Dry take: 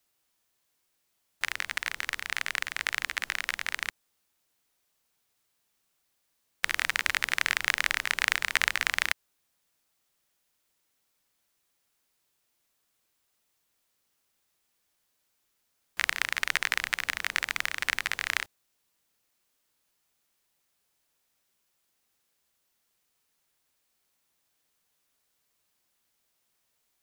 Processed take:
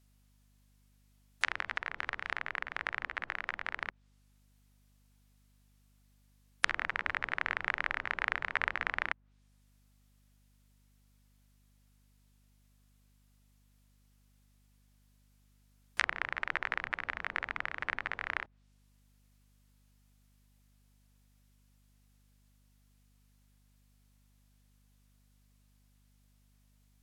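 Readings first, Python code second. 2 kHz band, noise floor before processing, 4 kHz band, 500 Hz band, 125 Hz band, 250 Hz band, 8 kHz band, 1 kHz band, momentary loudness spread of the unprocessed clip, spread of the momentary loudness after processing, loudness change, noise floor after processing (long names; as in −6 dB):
−5.5 dB, −76 dBFS, −12.5 dB, 0.0 dB, can't be measured, −0.5 dB, −18.0 dB, −1.0 dB, 7 LU, 5 LU, −6.5 dB, −67 dBFS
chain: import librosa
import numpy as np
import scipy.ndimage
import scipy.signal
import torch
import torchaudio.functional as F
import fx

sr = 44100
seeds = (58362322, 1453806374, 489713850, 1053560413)

y = fx.spec_gate(x, sr, threshold_db=-25, keep='strong')
y = fx.add_hum(y, sr, base_hz=50, snr_db=31)
y = fx.env_lowpass_down(y, sr, base_hz=1400.0, full_db=-30.5)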